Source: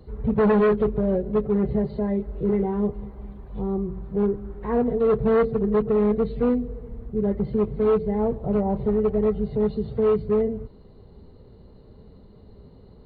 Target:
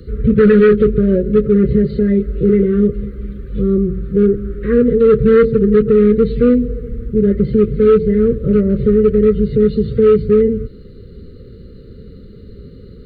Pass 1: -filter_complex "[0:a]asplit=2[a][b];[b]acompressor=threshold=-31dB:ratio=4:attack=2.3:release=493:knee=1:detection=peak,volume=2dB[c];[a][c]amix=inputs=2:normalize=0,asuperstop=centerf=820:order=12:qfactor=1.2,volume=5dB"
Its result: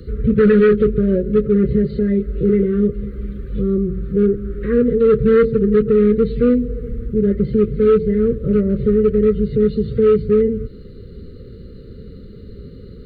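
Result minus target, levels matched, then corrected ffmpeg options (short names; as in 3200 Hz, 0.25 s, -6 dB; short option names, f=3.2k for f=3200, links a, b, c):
compressor: peak gain reduction +8.5 dB
-filter_complex "[0:a]asplit=2[a][b];[b]acompressor=threshold=-19.5dB:ratio=4:attack=2.3:release=493:knee=1:detection=peak,volume=2dB[c];[a][c]amix=inputs=2:normalize=0,asuperstop=centerf=820:order=12:qfactor=1.2,volume=5dB"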